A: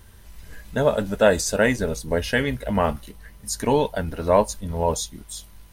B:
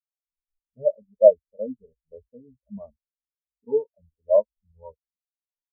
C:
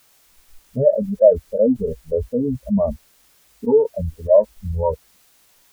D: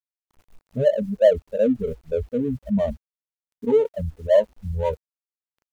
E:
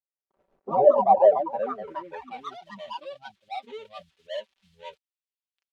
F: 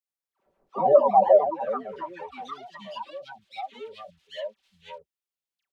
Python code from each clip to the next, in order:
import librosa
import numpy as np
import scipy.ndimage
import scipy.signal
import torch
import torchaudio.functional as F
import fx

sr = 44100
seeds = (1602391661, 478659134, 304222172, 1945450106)

y1 = scipy.signal.sosfilt(scipy.signal.butter(16, 1400.0, 'lowpass', fs=sr, output='sos'), x)
y1 = fx.spectral_expand(y1, sr, expansion=4.0)
y1 = y1 * librosa.db_to_amplitude(3.0)
y2 = fx.env_flatten(y1, sr, amount_pct=70)
y3 = scipy.ndimage.median_filter(y2, 25, mode='constant')
y3 = y3 * librosa.db_to_amplitude(-3.0)
y4 = fx.echo_pitch(y3, sr, ms=98, semitones=4, count=3, db_per_echo=-3.0)
y4 = fx.filter_sweep_bandpass(y4, sr, from_hz=510.0, to_hz=3300.0, start_s=0.89, end_s=2.55, q=1.9)
y4 = y4 + 0.53 * np.pad(y4, (int(5.2 * sr / 1000.0), 0))[:len(y4)]
y5 = fx.dispersion(y4, sr, late='lows', ms=94.0, hz=1200.0)